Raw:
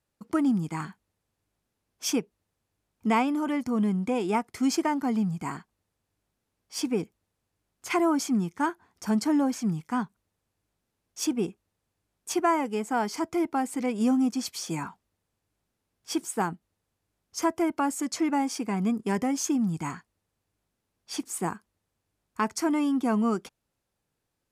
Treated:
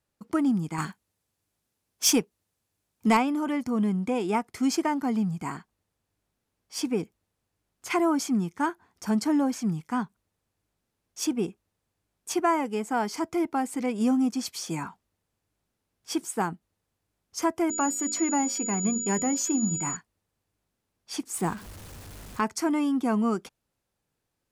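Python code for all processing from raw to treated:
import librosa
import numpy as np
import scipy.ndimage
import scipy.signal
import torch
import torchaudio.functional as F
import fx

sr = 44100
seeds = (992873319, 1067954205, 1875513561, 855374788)

y = fx.chain(x, sr, fx.highpass(hz=52.0, slope=12),
    fx.high_shelf(hz=3800.0, db=8.0),
    fx.leveller(passes=1), at=(0.78, 3.17))
y = fx.peak_eq(y, sr, hz=10000.0, db=-15.0, octaves=0.22, at=(17.69, 19.95), fade=0.02)
y = fx.hum_notches(y, sr, base_hz=60, count=9, at=(17.69, 19.95), fade=0.02)
y = fx.dmg_tone(y, sr, hz=6900.0, level_db=-30.0, at=(17.69, 19.95), fade=0.02)
y = fx.chain(y, sr, fx.zero_step(step_db=-40.5),
    fx.low_shelf(hz=130.0, db=8.0), at=(21.34, 22.41))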